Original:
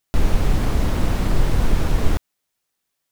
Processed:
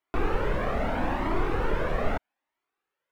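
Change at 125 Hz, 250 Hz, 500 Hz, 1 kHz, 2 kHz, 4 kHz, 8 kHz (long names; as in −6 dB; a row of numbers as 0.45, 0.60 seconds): −12.0 dB, −6.0 dB, +0.5 dB, +1.0 dB, −0.5 dB, −9.5 dB, below −15 dB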